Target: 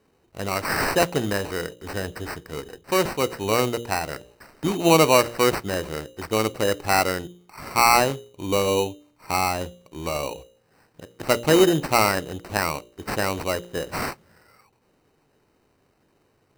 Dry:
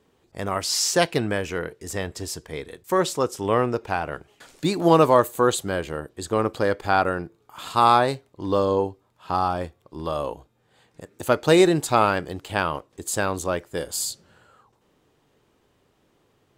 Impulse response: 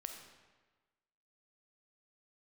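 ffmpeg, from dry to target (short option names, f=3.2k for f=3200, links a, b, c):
-af "bandreject=f=58.97:t=h:w=4,bandreject=f=117.94:t=h:w=4,bandreject=f=176.91:t=h:w=4,bandreject=f=235.88:t=h:w=4,bandreject=f=294.85:t=h:w=4,bandreject=f=353.82:t=h:w=4,bandreject=f=412.79:t=h:w=4,bandreject=f=471.76:t=h:w=4,bandreject=f=530.73:t=h:w=4,bandreject=f=589.7:t=h:w=4,acrusher=samples=13:mix=1:aa=0.000001"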